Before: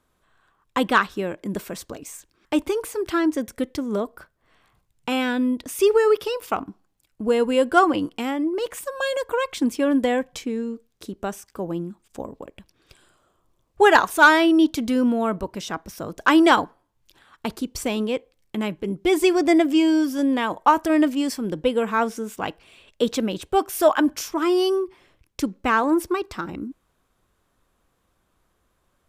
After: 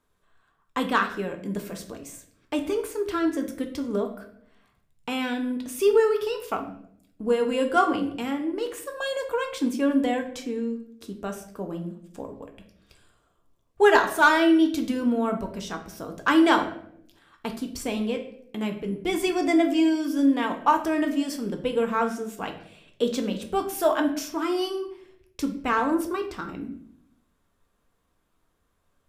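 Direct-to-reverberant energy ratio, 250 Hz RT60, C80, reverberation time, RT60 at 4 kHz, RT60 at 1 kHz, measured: 3.5 dB, 1.0 s, 13.0 dB, 0.70 s, 0.50 s, 0.60 s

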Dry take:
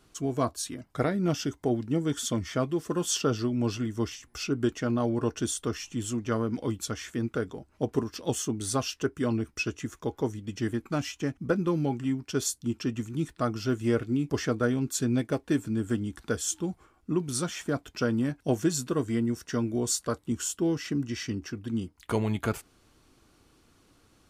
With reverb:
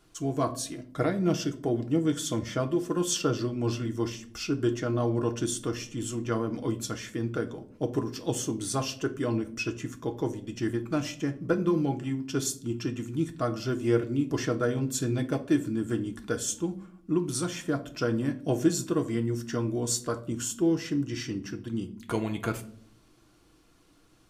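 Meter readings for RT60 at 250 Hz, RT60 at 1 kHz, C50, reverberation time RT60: 0.90 s, 0.45 s, 15.0 dB, 0.55 s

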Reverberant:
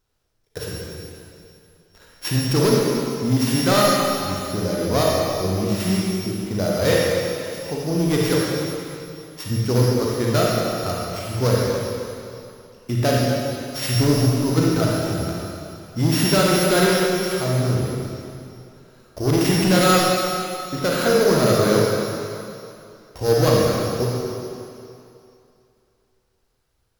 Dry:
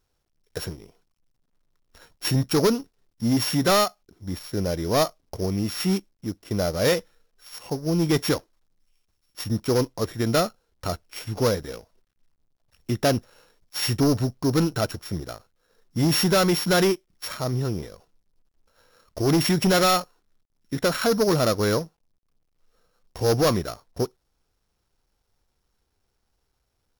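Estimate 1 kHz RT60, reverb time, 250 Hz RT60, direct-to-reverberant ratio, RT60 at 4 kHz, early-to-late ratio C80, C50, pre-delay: 2.7 s, 2.7 s, 2.5 s, -4.5 dB, 2.6 s, -1.0 dB, -3.0 dB, 34 ms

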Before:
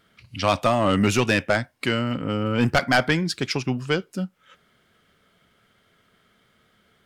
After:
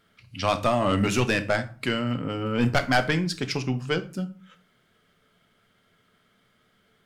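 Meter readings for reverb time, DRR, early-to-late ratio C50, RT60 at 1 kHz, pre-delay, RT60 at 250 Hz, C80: 0.40 s, 9.0 dB, 16.0 dB, 0.40 s, 4 ms, 0.65 s, 20.5 dB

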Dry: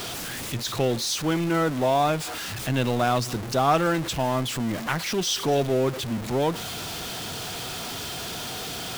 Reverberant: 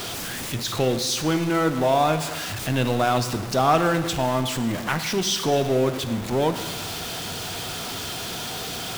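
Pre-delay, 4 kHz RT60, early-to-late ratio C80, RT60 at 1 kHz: 6 ms, 1.3 s, 12.0 dB, 1.3 s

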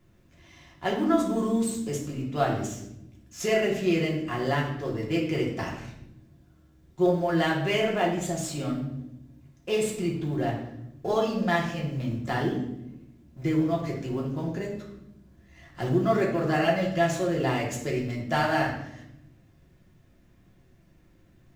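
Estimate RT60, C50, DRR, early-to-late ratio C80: not exponential, 5.5 dB, -3.5 dB, 9.0 dB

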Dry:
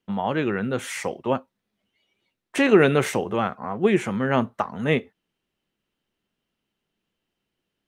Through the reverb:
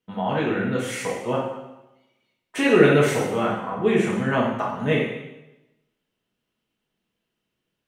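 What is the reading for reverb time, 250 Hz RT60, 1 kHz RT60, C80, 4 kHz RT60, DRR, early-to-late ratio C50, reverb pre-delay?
0.95 s, 0.95 s, 0.95 s, 5.5 dB, 0.90 s, -5.0 dB, 2.5 dB, 3 ms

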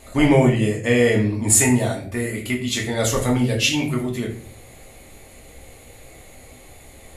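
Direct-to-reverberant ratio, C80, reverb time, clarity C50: -1.5 dB, 12.0 dB, 0.50 s, 8.5 dB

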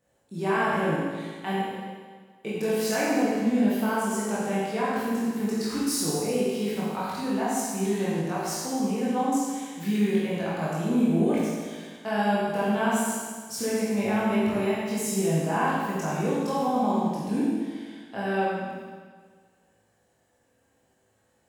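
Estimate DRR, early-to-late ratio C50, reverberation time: -8.5 dB, -2.5 dB, 1.6 s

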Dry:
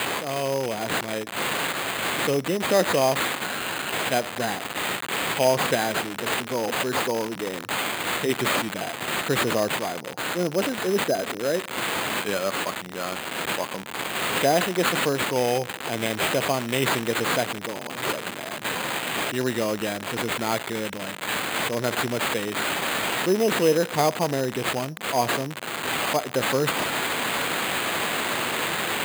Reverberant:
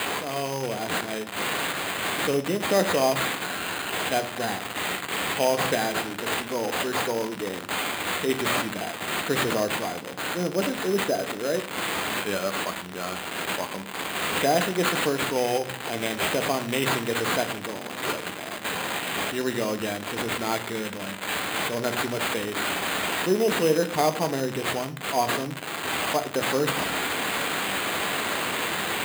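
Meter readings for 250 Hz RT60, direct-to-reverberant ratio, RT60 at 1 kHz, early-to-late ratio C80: 0.90 s, 8.0 dB, 0.50 s, 18.0 dB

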